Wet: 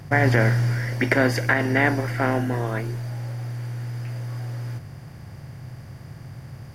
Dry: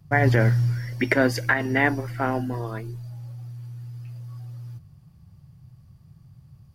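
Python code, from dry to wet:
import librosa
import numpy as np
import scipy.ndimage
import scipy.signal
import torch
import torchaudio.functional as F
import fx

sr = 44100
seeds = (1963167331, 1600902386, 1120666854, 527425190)

y = fx.bin_compress(x, sr, power=0.6)
y = fx.notch(y, sr, hz=4800.0, q=6.7, at=(2.33, 2.79))
y = y * librosa.db_to_amplitude(-1.5)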